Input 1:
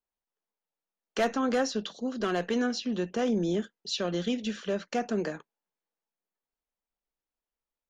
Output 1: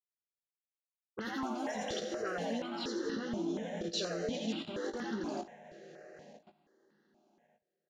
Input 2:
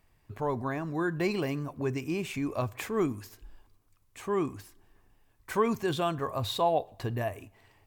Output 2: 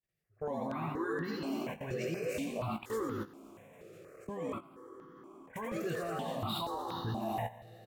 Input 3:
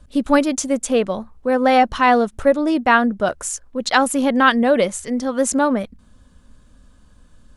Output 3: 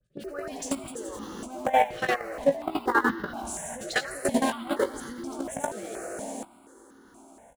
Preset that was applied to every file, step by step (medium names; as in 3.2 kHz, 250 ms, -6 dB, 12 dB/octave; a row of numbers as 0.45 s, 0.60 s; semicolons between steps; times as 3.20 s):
in parallel at -10 dB: Schmitt trigger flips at -19 dBFS; on the sum: dynamic bell 430 Hz, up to -4 dB, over -33 dBFS, Q 4.7; gate -38 dBFS, range -15 dB; phase dispersion highs, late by 47 ms, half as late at 2.4 kHz; compression 6:1, threshold -17 dBFS; high-pass 49 Hz 12 dB/octave; peaking EQ 1.7 kHz +3 dB 0.33 oct; on a send: frequency-shifting echo 85 ms, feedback 37%, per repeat +98 Hz, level -3 dB; on the sum: Schroeder reverb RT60 4 s, combs from 26 ms, DRR 7 dB; level held to a coarse grid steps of 17 dB; doubling 18 ms -7 dB; stepped phaser 4.2 Hz 260–2400 Hz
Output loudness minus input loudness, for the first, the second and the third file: -7.0 LU, -6.5 LU, -11.5 LU